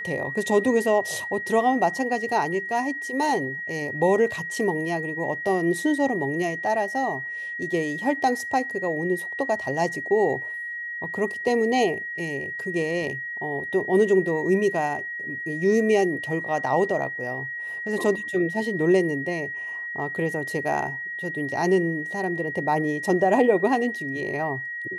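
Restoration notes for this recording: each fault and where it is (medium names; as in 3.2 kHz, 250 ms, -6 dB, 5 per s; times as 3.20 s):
whine 1.9 kHz -30 dBFS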